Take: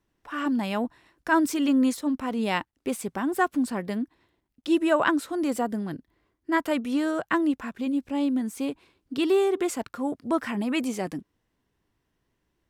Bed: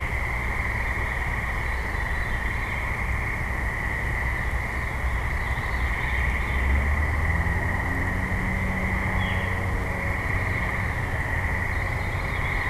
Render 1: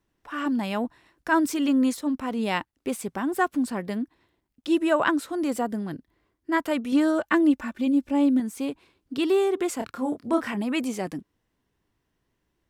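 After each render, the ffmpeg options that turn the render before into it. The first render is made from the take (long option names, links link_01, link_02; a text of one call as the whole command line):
ffmpeg -i in.wav -filter_complex "[0:a]asettb=1/sr,asplit=3[link_01][link_02][link_03];[link_01]atrim=end=6.924[link_04];[link_02]atrim=start=6.92:end=8.4,asetpts=PTS-STARTPTS,afade=type=in:duration=0.004:curve=qsin,afade=type=out:start_time=1.476:duration=0.004:curve=qsin,aecho=1:1:3.4:0.74,atrim=end_sample=65268[link_05];[link_03]atrim=start=8.396[link_06];[link_04][link_05]acrossfade=duration=0.004:curve1=hsin:curve2=qsin[link_07];[link_07][link_06]acrossfade=duration=0.004:curve1=qsin:curve2=hsin,asettb=1/sr,asplit=3[link_08][link_09][link_10];[link_08]atrim=end=9.774[link_11];[link_09]atrim=start=9.77:end=10.54,asetpts=PTS-STARTPTS,afade=type=in:duration=0.004:curve=qsin,afade=type=out:start_time=0.766:duration=0.004:curve=qsin,asplit=2[link_12][link_13];[link_13]adelay=27,volume=-5dB[link_14];[link_12][link_14]amix=inputs=2:normalize=0,atrim=end_sample=33957[link_15];[link_10]atrim=start=10.536[link_16];[link_11][link_15]acrossfade=duration=0.004:curve1=hsin:curve2=qsin[link_17];[link_17][link_16]acrossfade=duration=0.004:curve1=qsin:curve2=hsin" out.wav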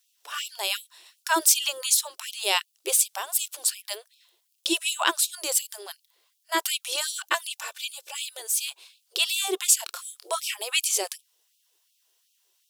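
ffmpeg -i in.wav -af "aexciter=amount=4.4:drive=7.5:freq=2800,afftfilt=real='re*gte(b*sr/1024,330*pow(2400/330,0.5+0.5*sin(2*PI*2.7*pts/sr)))':imag='im*gte(b*sr/1024,330*pow(2400/330,0.5+0.5*sin(2*PI*2.7*pts/sr)))':win_size=1024:overlap=0.75" out.wav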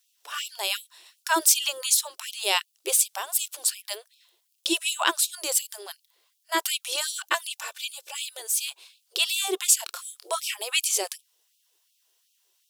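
ffmpeg -i in.wav -af anull out.wav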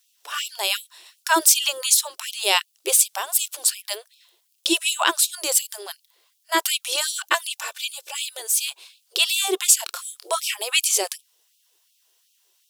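ffmpeg -i in.wav -af "volume=4.5dB,alimiter=limit=-2dB:level=0:latency=1" out.wav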